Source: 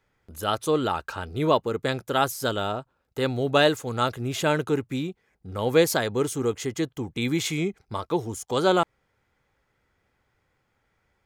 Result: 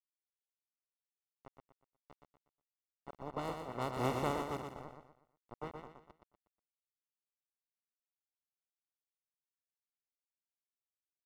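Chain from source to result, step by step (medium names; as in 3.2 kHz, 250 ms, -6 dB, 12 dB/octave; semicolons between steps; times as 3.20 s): spectral contrast reduction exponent 0.14; Doppler pass-by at 4.07 s, 17 m/s, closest 1.4 m; high-pass 41 Hz 12 dB/octave; level-controlled noise filter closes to 330 Hz, open at -33.5 dBFS; in parallel at +1.5 dB: compression, threshold -47 dBFS, peak gain reduction 20 dB; on the sum: bit crusher 7-bit; Savitzky-Golay filter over 65 samples; on a send: feedback delay 121 ms, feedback 37%, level -5.5 dB; on the sum: trim +4 dB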